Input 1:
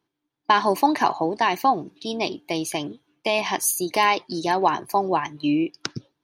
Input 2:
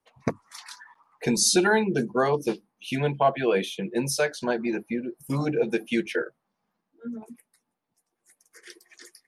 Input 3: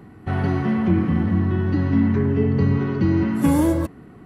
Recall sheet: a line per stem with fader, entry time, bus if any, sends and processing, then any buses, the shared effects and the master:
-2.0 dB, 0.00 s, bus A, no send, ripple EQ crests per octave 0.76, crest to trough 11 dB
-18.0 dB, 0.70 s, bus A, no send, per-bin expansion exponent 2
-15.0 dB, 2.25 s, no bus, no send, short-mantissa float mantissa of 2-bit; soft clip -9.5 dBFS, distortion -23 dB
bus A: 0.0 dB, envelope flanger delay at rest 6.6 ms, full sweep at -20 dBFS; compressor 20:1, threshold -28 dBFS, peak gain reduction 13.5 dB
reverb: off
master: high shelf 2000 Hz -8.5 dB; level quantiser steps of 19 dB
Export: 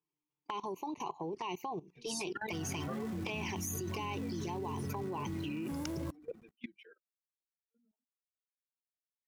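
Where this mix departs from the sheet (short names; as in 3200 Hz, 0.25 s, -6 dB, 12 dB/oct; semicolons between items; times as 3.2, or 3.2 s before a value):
stem 2 -18.0 dB -> -10.0 dB; master: missing high shelf 2000 Hz -8.5 dB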